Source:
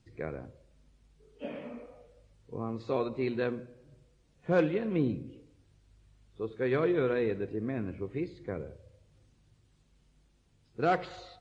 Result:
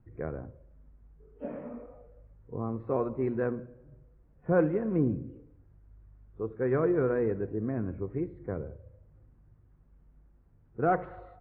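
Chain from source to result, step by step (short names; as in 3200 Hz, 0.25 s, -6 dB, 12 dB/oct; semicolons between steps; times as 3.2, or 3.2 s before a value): LPF 1600 Hz 24 dB/oct; low shelf 78 Hz +9.5 dB; gain +1 dB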